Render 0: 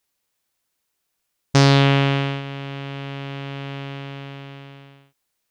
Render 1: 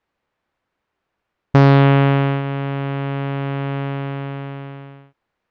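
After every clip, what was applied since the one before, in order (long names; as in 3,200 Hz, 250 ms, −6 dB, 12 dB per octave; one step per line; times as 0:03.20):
low-pass filter 1,700 Hz 12 dB per octave
in parallel at +3 dB: downward compressor, threshold −25 dBFS, peak gain reduction 13 dB
on the sum: level +1 dB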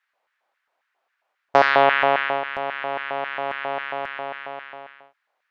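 auto-filter high-pass square 3.7 Hz 680–1,600 Hz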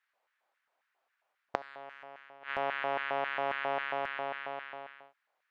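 in parallel at −9.5 dB: soft clipping −12.5 dBFS, distortion −9 dB
on the sum: gate with flip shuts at −9 dBFS, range −25 dB
level −8 dB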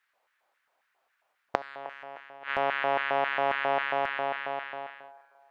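delay with a band-pass on its return 309 ms, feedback 39%, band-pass 710 Hz, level −15.5 dB
level +5.5 dB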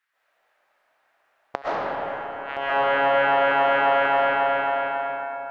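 comb and all-pass reverb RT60 3.7 s, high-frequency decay 0.45×, pre-delay 85 ms, DRR −10 dB
level −2.5 dB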